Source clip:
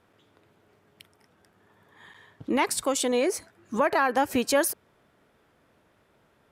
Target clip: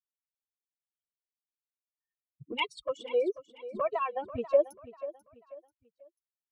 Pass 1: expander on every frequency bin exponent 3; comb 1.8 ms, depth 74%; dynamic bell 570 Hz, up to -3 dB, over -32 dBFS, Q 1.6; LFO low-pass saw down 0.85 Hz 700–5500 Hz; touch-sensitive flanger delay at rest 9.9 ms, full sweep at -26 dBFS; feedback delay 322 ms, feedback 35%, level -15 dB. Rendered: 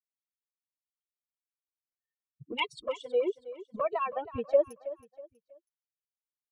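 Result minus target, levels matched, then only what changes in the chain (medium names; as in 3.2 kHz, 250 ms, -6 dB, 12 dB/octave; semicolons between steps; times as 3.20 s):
echo 167 ms early
change: feedback delay 489 ms, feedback 35%, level -15 dB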